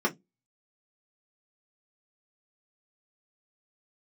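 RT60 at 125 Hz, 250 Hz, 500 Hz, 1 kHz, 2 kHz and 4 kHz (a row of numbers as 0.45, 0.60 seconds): 0.25, 0.30, 0.20, 0.15, 0.10, 0.15 seconds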